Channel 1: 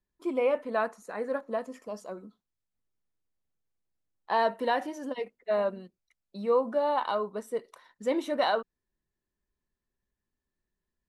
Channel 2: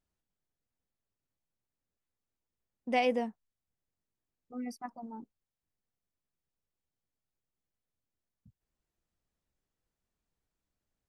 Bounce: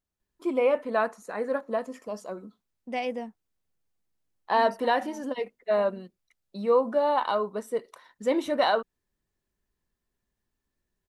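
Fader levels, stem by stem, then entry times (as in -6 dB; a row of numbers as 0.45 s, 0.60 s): +3.0 dB, -2.5 dB; 0.20 s, 0.00 s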